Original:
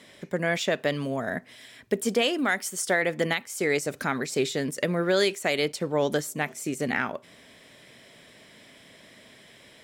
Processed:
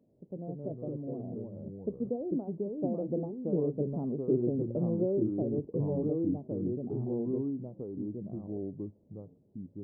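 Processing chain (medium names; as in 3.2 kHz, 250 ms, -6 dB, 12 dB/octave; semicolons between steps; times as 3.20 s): Doppler pass-by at 3.99 s, 10 m/s, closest 15 m; ever faster or slower copies 93 ms, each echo -3 st, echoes 2; Gaussian low-pass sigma 17 samples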